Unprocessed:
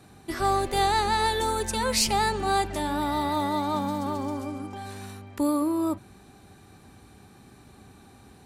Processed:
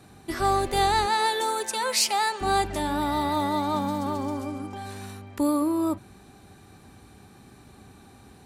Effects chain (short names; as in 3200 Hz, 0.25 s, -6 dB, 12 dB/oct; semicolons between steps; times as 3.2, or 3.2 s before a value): 1.05–2.4 HPF 300 Hz -> 660 Hz 12 dB/oct; gain +1 dB